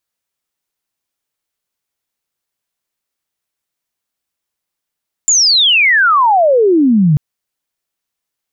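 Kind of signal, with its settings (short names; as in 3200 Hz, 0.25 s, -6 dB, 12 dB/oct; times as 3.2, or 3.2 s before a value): chirp logarithmic 7300 Hz -> 140 Hz -7 dBFS -> -6.5 dBFS 1.89 s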